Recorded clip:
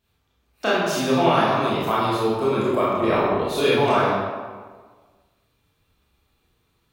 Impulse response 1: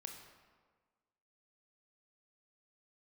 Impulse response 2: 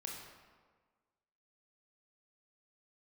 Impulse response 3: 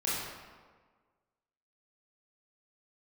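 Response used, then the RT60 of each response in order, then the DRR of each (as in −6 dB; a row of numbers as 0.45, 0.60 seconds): 3; 1.5, 1.5, 1.5 seconds; 3.0, −1.0, −8.5 decibels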